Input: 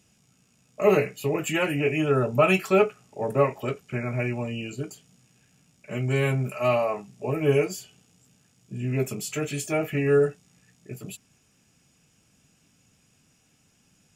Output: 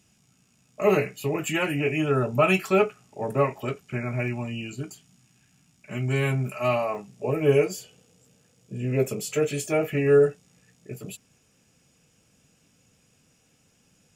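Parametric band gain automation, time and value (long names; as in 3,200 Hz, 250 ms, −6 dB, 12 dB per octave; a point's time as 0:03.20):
parametric band 500 Hz 0.39 octaves
−4 dB
from 0:04.28 −12 dB
from 0:06.02 −6 dB
from 0:06.95 +5 dB
from 0:07.74 +13 dB
from 0:09.61 +6.5 dB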